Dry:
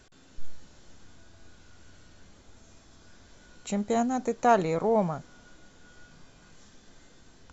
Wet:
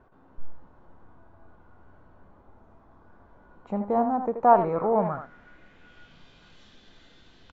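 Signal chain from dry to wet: vibrato 1.1 Hz 10 cents; speakerphone echo 80 ms, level -7 dB; low-pass sweep 1000 Hz -> 3500 Hz, 4.54–6.29; gain -1 dB

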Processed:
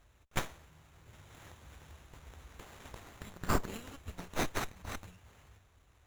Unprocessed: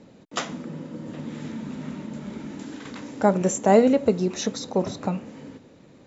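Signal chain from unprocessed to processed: inverse Chebyshev band-stop 220–1500 Hz, stop band 60 dB; running maximum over 9 samples; gain +5.5 dB

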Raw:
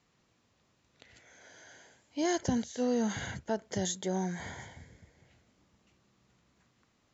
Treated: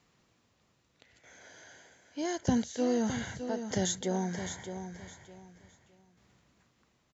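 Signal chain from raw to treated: tremolo saw down 0.81 Hz, depth 65%; on a send: feedback echo 0.612 s, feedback 25%, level -9 dB; on the sum: gain +3 dB

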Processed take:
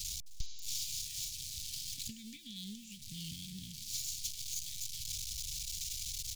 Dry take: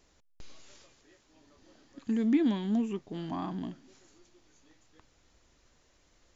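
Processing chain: zero-crossing step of -39.5 dBFS; high shelf 2000 Hz +9 dB; transient shaper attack +10 dB, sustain -3 dB; small resonant body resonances 410/2300 Hz, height 9 dB; compressor 3:1, threshold -29 dBFS, peak gain reduction 11 dB; inverse Chebyshev band-stop 460–1000 Hz, stop band 80 dB; echo 0.262 s -20.5 dB; Doppler distortion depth 0.24 ms; gain +1 dB

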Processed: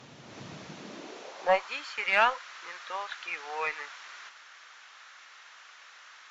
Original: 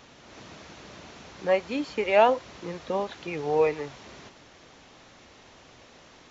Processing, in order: high-pass sweep 130 Hz -> 1400 Hz, 0.62–1.77; added harmonics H 4 -27 dB, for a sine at -10 dBFS

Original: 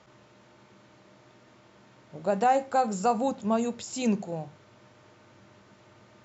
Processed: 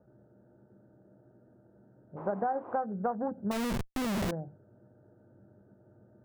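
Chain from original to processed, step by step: Wiener smoothing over 41 samples; elliptic low-pass 1600 Hz, stop band 40 dB; 2.16–2.76 band noise 270–1100 Hz -44 dBFS; 3.51–4.31 Schmitt trigger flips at -45.5 dBFS; compressor 6:1, threshold -28 dBFS, peak gain reduction 9.5 dB

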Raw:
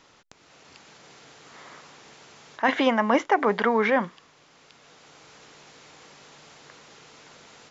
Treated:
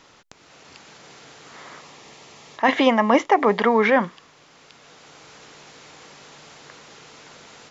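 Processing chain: 1.79–3.84 notch 1500 Hz, Q 5.2; gain +4.5 dB

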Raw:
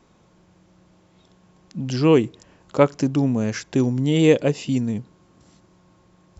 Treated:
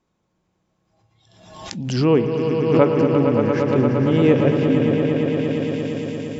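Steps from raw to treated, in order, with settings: swelling echo 0.115 s, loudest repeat 5, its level -8.5 dB; spectral noise reduction 14 dB; spring tank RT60 3.1 s, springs 48 ms, chirp 60 ms, DRR 9.5 dB; treble ducked by the level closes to 2500 Hz, closed at -14.5 dBFS; backwards sustainer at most 57 dB/s; gain -1 dB

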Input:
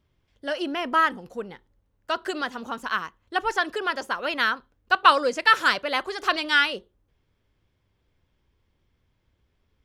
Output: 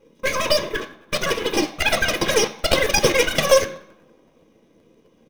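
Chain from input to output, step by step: notch 1100 Hz, Q 14; comb 6.9 ms, depth 81%; compressor, threshold -17 dBFS, peak gain reduction 9 dB; wide varispeed 1.86×; tape echo 91 ms, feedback 79%, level -22 dB, low-pass 1200 Hz; flange 0.32 Hz, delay 4.9 ms, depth 4 ms, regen -87%; small resonant body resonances 240/730/2100 Hz, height 9 dB, ringing for 45 ms; full-wave rectifier; short-mantissa float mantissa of 2-bit; reverb RT60 0.60 s, pre-delay 3 ms, DRR 7.5 dB; crackling interface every 0.13 s, samples 512, repeat, from 0.89; gain +6 dB

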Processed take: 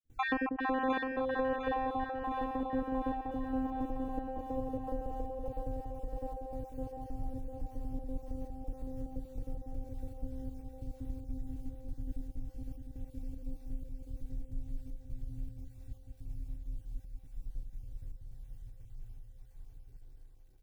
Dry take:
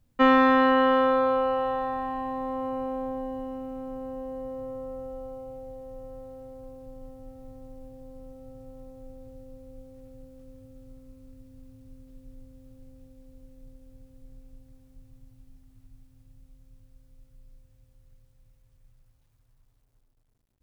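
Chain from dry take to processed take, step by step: random spectral dropouts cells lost 36%; low shelf 420 Hz +8 dB; notch 1200 Hz, Q 5.8; comb 2.6 ms, depth 63%; compressor 4:1, threshold -35 dBFS, peak gain reduction 18 dB; step gate ".xxxx.xxxx." 154 bpm -24 dB; on a send: split-band echo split 510 Hz, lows 0.19 s, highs 0.705 s, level -4 dB; on the sum: gain +2 dB

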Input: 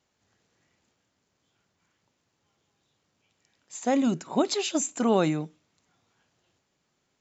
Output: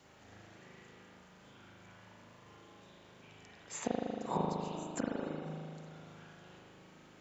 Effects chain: flipped gate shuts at -20 dBFS, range -27 dB; spring tank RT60 1.7 s, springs 38 ms, chirp 60 ms, DRR -6.5 dB; three-band squash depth 40%; gain +1 dB

